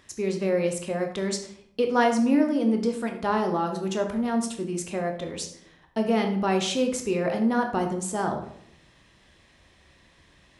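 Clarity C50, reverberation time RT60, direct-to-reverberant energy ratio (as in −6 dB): 8.0 dB, 0.70 s, 3.5 dB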